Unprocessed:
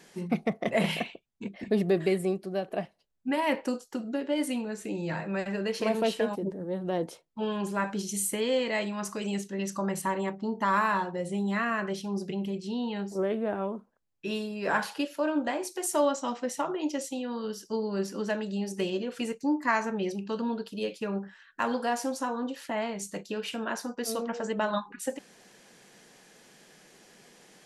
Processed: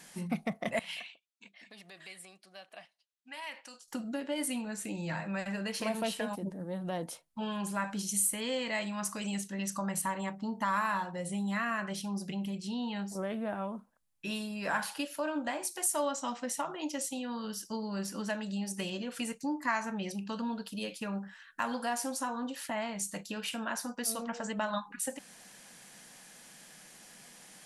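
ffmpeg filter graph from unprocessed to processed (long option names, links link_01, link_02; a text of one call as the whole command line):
ffmpeg -i in.wav -filter_complex "[0:a]asettb=1/sr,asplit=3[link_01][link_02][link_03];[link_01]atrim=end=0.794[link_04];[link_02]atrim=start=0.79:end=3.88,asetpts=PTS-STARTPTS,afade=type=in:duration=0.004:curve=qsin,afade=type=out:start_time=3.086:duration=0.004:curve=qsin,highshelf=frequency=3900:gain=-8,acompressor=threshold=-26dB:ratio=6:attack=3.2:release=140:knee=1:detection=peak,bandpass=frequency=4600:width_type=q:width=0.86[link_05];[link_03]atrim=start=3.876[link_06];[link_04][link_05]acrossfade=duration=0.004:curve1=hsin:curve2=qsin[link_07];[link_07][link_06]acrossfade=duration=0.004:curve1=qsin:curve2=hsin,equalizer=frequency=100:width_type=o:width=0.67:gain=-4,equalizer=frequency=400:width_type=o:width=0.67:gain=-12,equalizer=frequency=10000:width_type=o:width=0.67:gain=9,acompressor=threshold=-39dB:ratio=1.5,volume=1.5dB" out.wav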